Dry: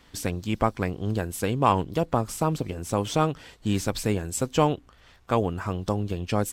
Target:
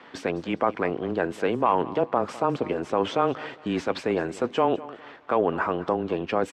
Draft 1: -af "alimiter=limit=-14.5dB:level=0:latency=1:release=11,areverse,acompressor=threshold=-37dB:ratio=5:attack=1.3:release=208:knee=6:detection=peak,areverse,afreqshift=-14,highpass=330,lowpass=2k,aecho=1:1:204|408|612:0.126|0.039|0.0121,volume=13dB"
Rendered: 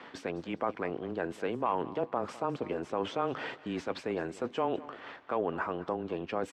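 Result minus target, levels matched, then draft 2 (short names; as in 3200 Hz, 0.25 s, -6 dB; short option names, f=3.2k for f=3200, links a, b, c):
compressor: peak gain reduction +9 dB
-af "alimiter=limit=-14.5dB:level=0:latency=1:release=11,areverse,acompressor=threshold=-26dB:ratio=5:attack=1.3:release=208:knee=6:detection=peak,areverse,afreqshift=-14,highpass=330,lowpass=2k,aecho=1:1:204|408|612:0.126|0.039|0.0121,volume=13dB"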